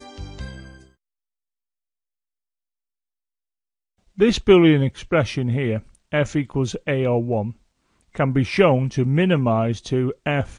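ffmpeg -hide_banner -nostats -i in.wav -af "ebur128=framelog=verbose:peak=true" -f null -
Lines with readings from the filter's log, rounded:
Integrated loudness:
  I:         -20.1 LUFS
  Threshold: -31.1 LUFS
Loudness range:
  LRA:         3.8 LU
  Threshold: -42.0 LUFS
  LRA low:   -23.7 LUFS
  LRA high:  -19.9 LUFS
True peak:
  Peak:       -1.6 dBFS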